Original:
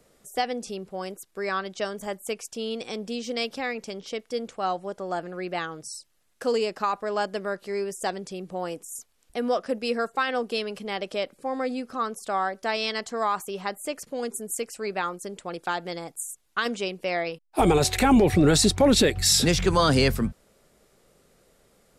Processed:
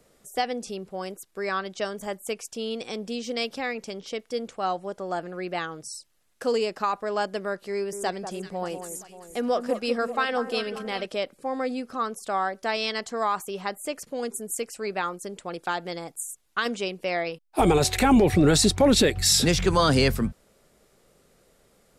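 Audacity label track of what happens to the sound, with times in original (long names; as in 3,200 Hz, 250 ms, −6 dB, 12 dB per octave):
7.730000	11.060000	delay that swaps between a low-pass and a high-pass 194 ms, split 1,400 Hz, feedback 67%, level −8.5 dB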